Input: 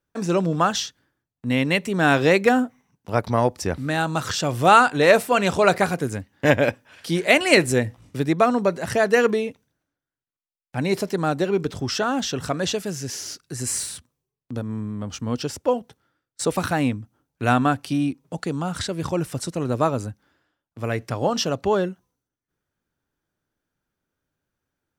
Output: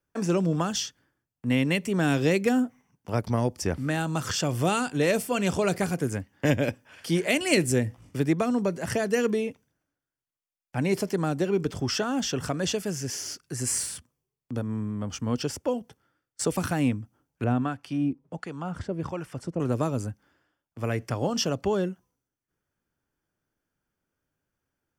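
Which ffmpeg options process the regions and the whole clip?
-filter_complex "[0:a]asettb=1/sr,asplit=3[a][b][c];[a]atrim=end=17.444[d];[b]atrim=start=17.44:end=19.6,asetpts=PTS-STARTPTS,afade=t=in:d=0.004:c=qsin,afade=t=out:st=2.156:d=0.004:c=qsin,lowpass=f=2.1k:p=1,acrossover=split=850[e][f];[e]aeval=exprs='val(0)*(1-0.7/2+0.7/2*cos(2*PI*1.4*n/s))':c=same[g];[f]aeval=exprs='val(0)*(1-0.7/2-0.7/2*cos(2*PI*1.4*n/s))':c=same[h];[g][h]amix=inputs=2:normalize=0[i];[c]atrim=start=19.596[j];[d][i]acrossfade=d=0.004:c1=hsin:c2=qsin[k];[k][j]acrossfade=d=0.004:c1=qsin:c2=hsin,bandreject=f=3.9k:w=5.4,acrossover=split=390|3000[l][m][n];[m]acompressor=threshold=-28dB:ratio=6[o];[l][o][n]amix=inputs=3:normalize=0,volume=-1.5dB"

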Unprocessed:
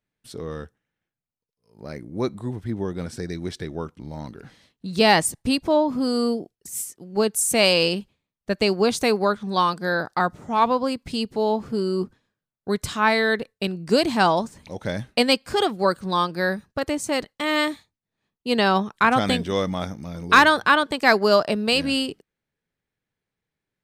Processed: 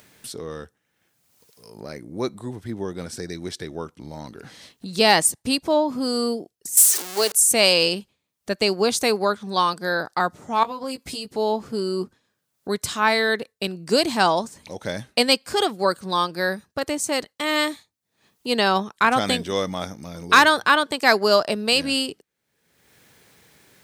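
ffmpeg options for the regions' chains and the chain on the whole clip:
-filter_complex "[0:a]asettb=1/sr,asplit=3[a][b][c];[a]atrim=end=6.774[d];[b]atrim=start=6.77:end=7.32,asetpts=PTS-STARTPTS,afade=t=in:d=0.004:c=qsin,afade=t=out:st=0.546:d=0.004:c=qsin,aeval=exprs='val(0)+0.5*0.0473*sgn(val(0))':c=same,highpass=420,highshelf=f=3k:g=8[e];[c]atrim=start=7.316[f];[d][e]acrossfade=d=0.004:c1=hsin:c2=qsin[g];[g][f]acrossfade=d=0.004:c1=qsin:c2=hsin,asettb=1/sr,asplit=3[h][i][j];[h]atrim=end=10.634[k];[i]atrim=start=10.63:end=11.28,asetpts=PTS-STARTPTS,afade=t=in:d=0.004:c=qsin,afade=t=out:st=0.646:d=0.004:c=qsin,highshelf=f=8.8k:g=7.5,acompressor=threshold=-27dB:ratio=6:attack=3.2:release=140:knee=1:detection=peak,asplit=2[l][m];[m]adelay=15,volume=-4.5dB[n];[l][n]amix=inputs=2:normalize=0,atrim=end_sample=28665[o];[j]atrim=start=11.276[p];[k][o]acrossfade=d=0.004:c1=hsin:c2=qsin[q];[q][p]acrossfade=d=0.004:c1=qsin:c2=hsin,highpass=56,bass=f=250:g=-5,treble=f=4k:g=6,acompressor=mode=upward:threshold=-31dB:ratio=2.5"

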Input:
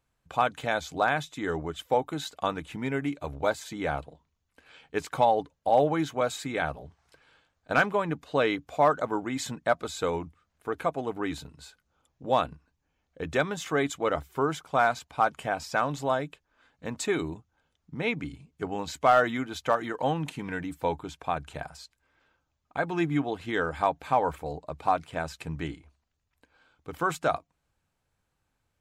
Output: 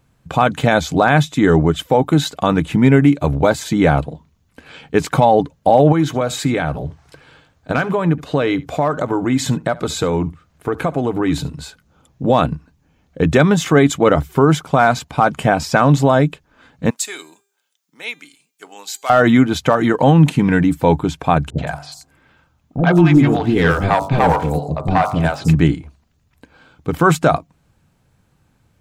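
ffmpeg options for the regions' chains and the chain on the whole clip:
-filter_complex "[0:a]asettb=1/sr,asplit=3[a][b][c];[a]atrim=end=5.924[d];[b]atrim=start=5.92:end=11.58,asetpts=PTS-STARTPTS,afade=t=in:d=0.004:c=qsin,afade=t=out:st=5.656:d=0.004:c=qsin,bandreject=f=210:w=5.9,acompressor=threshold=-34dB:ratio=2.5:attack=3.2:release=140:knee=1:detection=peak,aecho=1:1:71:0.0944,atrim=end_sample=249606[e];[c]atrim=start=11.576[f];[d][e]acrossfade=d=0.004:c1=hsin:c2=qsin[g];[g][f]acrossfade=d=0.004:c1=qsin:c2=hsin,asettb=1/sr,asplit=3[h][i][j];[h]atrim=end=16.904[k];[i]atrim=start=16.9:end=19.1,asetpts=PTS-STARTPTS,afade=t=in:d=0.004:c=qsin,afade=t=out:st=2.196:d=0.004:c=qsin,highpass=300,aderivative,bandreject=f=399:t=h:w=4,bandreject=f=798:t=h:w=4,bandreject=f=1.197k:t=h:w=4,bandreject=f=1.596k:t=h:w=4,bandreject=f=1.995k:t=h:w=4,bandreject=f=2.394k:t=h:w=4,bandreject=f=2.793k:t=h:w=4,bandreject=f=3.192k:t=h:w=4,bandreject=f=3.591k:t=h:w=4,bandreject=f=3.99k:t=h:w=4,bandreject=f=4.389k:t=h:w=4,bandreject=f=4.788k:t=h:w=4,bandreject=f=5.187k:t=h:w=4,bandreject=f=5.586k:t=h:w=4,bandreject=f=5.985k:t=h:w=4,bandreject=f=6.384k:t=h:w=4,bandreject=f=6.783k:t=h:w=4,bandreject=f=7.182k:t=h:w=4,bandreject=f=7.581k:t=h:w=4,bandreject=f=7.98k:t=h:w=4,bandreject=f=8.379k:t=h:w=4,bandreject=f=8.778k:t=h:w=4,bandreject=f=9.177k:t=h:w=4,bandreject=f=9.576k:t=h:w=4,bandreject=f=9.975k:t=h:w=4,bandreject=f=10.374k:t=h:w=4,bandreject=f=10.773k:t=h:w=4,bandreject=f=11.172k:t=h:w=4,bandreject=f=11.571k:t=h:w=4,bandreject=f=11.97k:t=h:w=4,bandreject=f=12.369k:t=h:w=4,bandreject=f=12.768k:t=h:w=4,bandreject=f=13.167k:t=h:w=4,bandreject=f=13.566k:t=h:w=4,bandreject=f=13.965k:t=h:w=4,bandreject=f=14.364k:t=h:w=4,bandreject=f=14.763k:t=h:w=4[l];[j]atrim=start=19.096[m];[k][l]acrossfade=d=0.004:c1=hsin:c2=qsin[n];[n][m]acrossfade=d=0.004:c1=qsin:c2=hsin,asettb=1/sr,asplit=3[o][p][q];[o]atrim=end=21.504[r];[p]atrim=start=21.5:end=25.55,asetpts=PTS-STARTPTS,afade=t=in:d=0.004:c=qsin,afade=t=out:st=4.046:d=0.004:c=qsin,bandreject=f=48.21:t=h:w=4,bandreject=f=96.42:t=h:w=4,bandreject=f=144.63:t=h:w=4,bandreject=f=192.84:t=h:w=4,bandreject=f=241.05:t=h:w=4,bandreject=f=289.26:t=h:w=4,bandreject=f=337.47:t=h:w=4,bandreject=f=385.68:t=h:w=4,bandreject=f=433.89:t=h:w=4,bandreject=f=482.1:t=h:w=4,bandreject=f=530.31:t=h:w=4,bandreject=f=578.52:t=h:w=4,bandreject=f=626.73:t=h:w=4,bandreject=f=674.94:t=h:w=4,bandreject=f=723.15:t=h:w=4,bandreject=f=771.36:t=h:w=4,bandreject=f=819.57:t=h:w=4,bandreject=f=867.78:t=h:w=4,bandreject=f=915.99:t=h:w=4,bandreject=f=964.2:t=h:w=4,bandreject=f=1.01241k:t=h:w=4,bandreject=f=1.06062k:t=h:w=4,bandreject=f=1.10883k:t=h:w=4,bandreject=f=1.15704k:t=h:w=4,bandreject=f=1.20525k:t=h:w=4,bandreject=f=1.25346k:t=h:w=4,bandreject=f=1.30167k:t=h:w=4,bandreject=f=1.34988k:t=h:w=4,bandreject=f=1.39809k:t=h:w=4,aeval=exprs='clip(val(0),-1,0.0562)':c=same,acrossover=split=490|5600[s][t][u];[t]adelay=80[v];[u]adelay=170[w];[s][v][w]amix=inputs=3:normalize=0,atrim=end_sample=178605[x];[q]atrim=start=25.546[y];[r][x]acrossfade=d=0.004:c1=hsin:c2=qsin[z];[z][y]acrossfade=d=0.004:c1=qsin:c2=hsin,equalizer=f=160:t=o:w=2.2:g=10.5,alimiter=level_in=14.5dB:limit=-1dB:release=50:level=0:latency=1,volume=-1dB"

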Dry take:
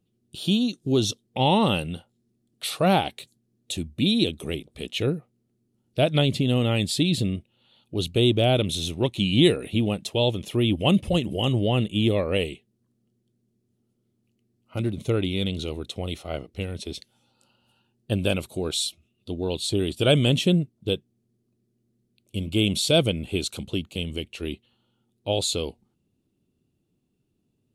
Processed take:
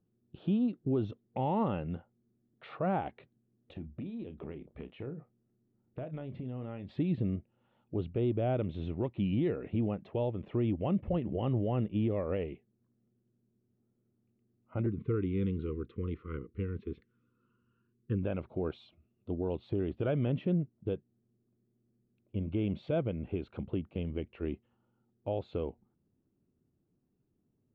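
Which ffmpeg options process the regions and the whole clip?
-filter_complex "[0:a]asettb=1/sr,asplit=3[a][b][c];[a]atrim=end=3.734[d];[b]atrim=start=3.73:end=6.89,asetpts=PTS-STARTPTS,afade=t=in:d=0.004:c=qsin,afade=t=out:st=3.156:d=0.004:c=qsin,acompressor=threshold=-32dB:ratio=12:attack=3.2:release=140:knee=1:detection=peak,asplit=2[e][f];[f]adelay=31,volume=-11dB[g];[e][g]amix=inputs=2:normalize=0,atrim=end_sample=139356[h];[c]atrim=start=6.886[i];[d][h]acrossfade=d=0.004:c1=hsin:c2=qsin[j];[j][i]acrossfade=d=0.004:c1=qsin:c2=hsin,asettb=1/sr,asplit=3[k][l][m];[k]atrim=end=14.864[n];[l]atrim=start=14.86:end=18.23,asetpts=PTS-STARTPTS,afade=t=in:d=0.004:c=qsin,afade=t=out:st=3.366:d=0.004:c=qsin,asuperstop=centerf=710:order=12:qfactor=1.3,equalizer=f=4.7k:t=o:w=2.3:g=-4.5[o];[m]atrim=start=18.226[p];[n][o]acrossfade=d=0.004:c1=hsin:c2=qsin[q];[q][p]acrossfade=d=0.004:c1=qsin:c2=hsin,lowpass=f=1.8k:w=0.5412,lowpass=f=1.8k:w=1.3066,alimiter=limit=-18.5dB:level=0:latency=1:release=207,volume=-4dB"

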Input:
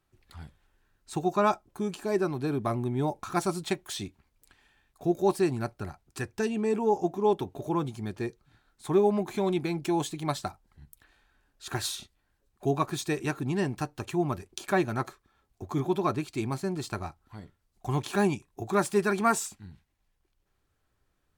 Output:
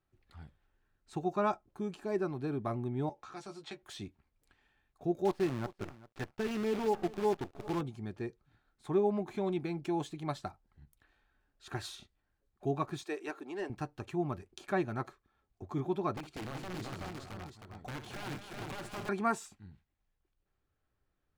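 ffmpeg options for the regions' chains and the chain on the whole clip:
-filter_complex "[0:a]asettb=1/sr,asplit=3[a][b][c];[a]atrim=end=3.094[d];[b]atrim=start=3.09:end=3.83,asetpts=PTS-STARTPTS,afade=t=in:d=0.004:c=qsin,afade=t=out:st=0.736:d=0.004:c=qsin,acrossover=split=380 7400:gain=0.224 1 0.126[e][f][g];[e][f][g]amix=inputs=3:normalize=0,acrossover=split=270|3000[h][i][j];[i]acompressor=threshold=-41dB:ratio=4:attack=3.2:release=140:knee=2.83:detection=peak[k];[h][k][j]amix=inputs=3:normalize=0,asplit=2[l][m];[m]adelay=14,volume=-6dB[n];[l][n]amix=inputs=2:normalize=0,atrim=end_sample=32634[o];[c]atrim=start=3.826[p];[d][o]acrossfade=d=0.004:c1=hsin:c2=qsin[q];[q][p]acrossfade=d=0.004:c1=qsin:c2=hsin,asettb=1/sr,asplit=3[r][s][t];[r]atrim=end=5.254[u];[s]atrim=start=5.25:end=7.81,asetpts=PTS-STARTPTS,afade=t=in:d=0.004:c=qsin,afade=t=out:st=2.556:d=0.004:c=qsin,lowpass=4.1k,acrusher=bits=6:dc=4:mix=0:aa=0.000001,aecho=1:1:396:0.112,atrim=end_sample=112896[v];[t]atrim=start=7.806[w];[u][v]acrossfade=d=0.004:c1=hsin:c2=qsin[x];[x][w]acrossfade=d=0.004:c1=qsin:c2=hsin,asettb=1/sr,asplit=3[y][z][aa];[y]atrim=end=13.034[ab];[z]atrim=start=13.03:end=13.7,asetpts=PTS-STARTPTS,afade=t=in:d=0.004:c=qsin,afade=t=out:st=0.666:d=0.004:c=qsin,highpass=f=330:w=0.5412,highpass=f=330:w=1.3066,volume=23.5dB,asoftclip=hard,volume=-23.5dB[ac];[aa]atrim=start=13.696[ad];[ab][ac]acrossfade=d=0.004:c1=hsin:c2=qsin[ae];[ae][ad]acrossfade=d=0.004:c1=qsin:c2=hsin,asettb=1/sr,asplit=3[af][ag][ah];[af]atrim=end=16.174[ai];[ag]atrim=start=16.17:end=19.09,asetpts=PTS-STARTPTS,afade=t=in:d=0.004:c=qsin,afade=t=out:st=2.916:d=0.004:c=qsin,acompressor=threshold=-31dB:ratio=5:attack=3.2:release=140:knee=1:detection=peak,aeval=exprs='(mod(28.2*val(0)+1,2)-1)/28.2':c=same,aecho=1:1:60|225|377|691:0.282|0.376|0.708|0.398,atrim=end_sample=128772[aj];[ah]atrim=start=19.086[ak];[ai][aj]acrossfade=d=0.004:c1=hsin:c2=qsin[al];[al][ak]acrossfade=d=0.004:c1=qsin:c2=hsin,lowpass=f=2.7k:p=1,bandreject=f=990:w=17,volume=-6dB"

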